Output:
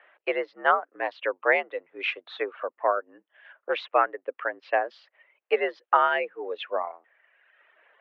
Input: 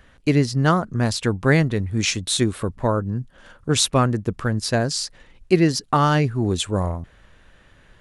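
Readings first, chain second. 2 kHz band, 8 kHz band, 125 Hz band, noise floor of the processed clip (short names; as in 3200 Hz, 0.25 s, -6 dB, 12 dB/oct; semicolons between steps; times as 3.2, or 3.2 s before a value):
0.0 dB, under -40 dB, under -40 dB, -84 dBFS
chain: reverb removal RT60 1.2 s; mistuned SSB +69 Hz 430–2700 Hz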